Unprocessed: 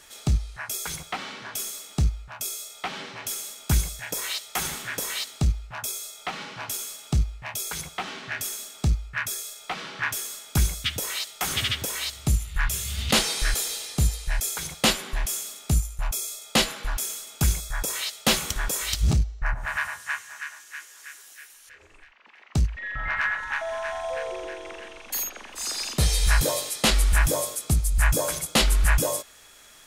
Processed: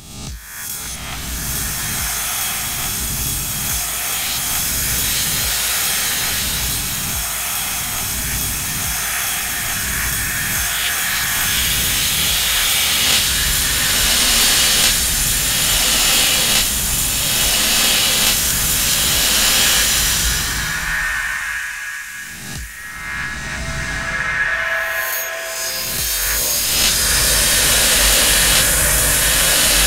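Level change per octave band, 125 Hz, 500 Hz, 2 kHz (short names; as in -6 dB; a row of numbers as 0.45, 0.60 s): +0.5, +4.5, +12.0 dB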